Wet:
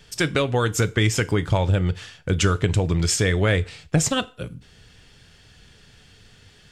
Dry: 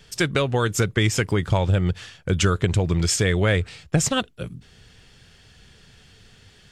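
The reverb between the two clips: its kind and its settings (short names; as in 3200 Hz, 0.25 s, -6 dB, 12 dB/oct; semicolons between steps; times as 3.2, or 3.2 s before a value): FDN reverb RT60 0.37 s, low-frequency decay 0.75×, high-frequency decay 0.95×, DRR 13 dB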